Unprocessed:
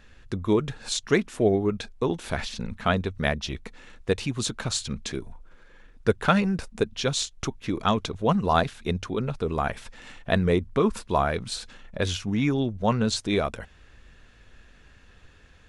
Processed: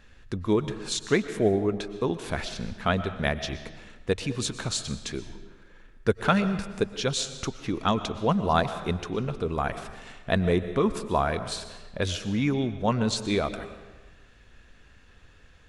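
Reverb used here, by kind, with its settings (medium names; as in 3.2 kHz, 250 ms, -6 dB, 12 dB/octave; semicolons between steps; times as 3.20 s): algorithmic reverb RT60 1.3 s, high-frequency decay 0.8×, pre-delay 80 ms, DRR 11.5 dB; trim -1.5 dB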